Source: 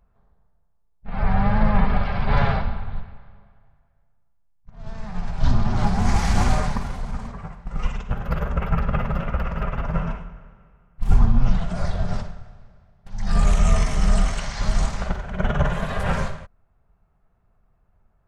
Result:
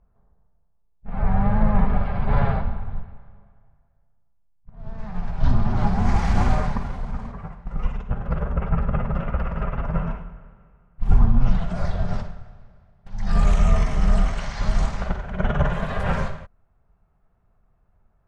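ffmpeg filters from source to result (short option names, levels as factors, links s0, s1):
-af "asetnsamples=n=441:p=0,asendcmd='4.99 lowpass f 2000;7.74 lowpass f 1100;9.15 lowpass f 1800;11.41 lowpass f 3500;13.65 lowpass f 2200;14.4 lowpass f 3300',lowpass=f=1000:p=1"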